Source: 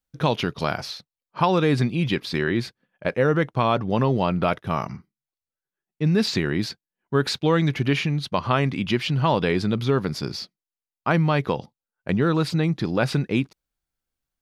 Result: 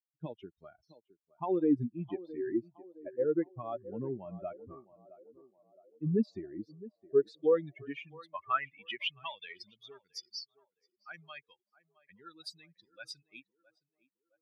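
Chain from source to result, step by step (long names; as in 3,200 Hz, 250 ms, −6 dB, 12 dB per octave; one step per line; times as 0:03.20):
spectral dynamics exaggerated over time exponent 3
feedback echo with a band-pass in the loop 665 ms, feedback 50%, band-pass 510 Hz, level −16 dB
band-pass filter sweep 320 Hz → 4,900 Hz, 0:06.99–0:09.74
level +2.5 dB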